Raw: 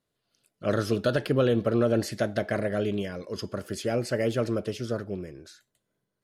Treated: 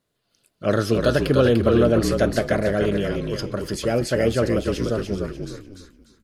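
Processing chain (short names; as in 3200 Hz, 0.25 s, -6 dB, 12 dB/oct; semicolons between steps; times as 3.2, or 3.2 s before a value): frequency-shifting echo 0.296 s, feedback 30%, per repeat -46 Hz, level -5 dB; gain +5.5 dB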